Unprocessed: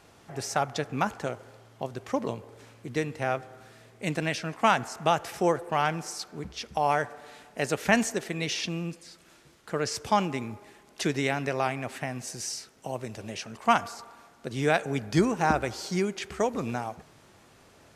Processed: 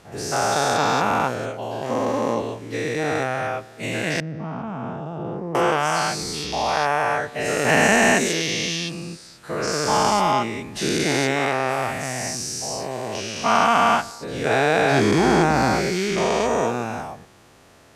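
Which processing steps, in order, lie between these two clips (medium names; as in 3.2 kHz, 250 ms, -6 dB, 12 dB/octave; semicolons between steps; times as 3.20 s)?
every event in the spectrogram widened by 480 ms; 4.20–5.55 s: band-pass filter 150 Hz, Q 1.3; trim -1 dB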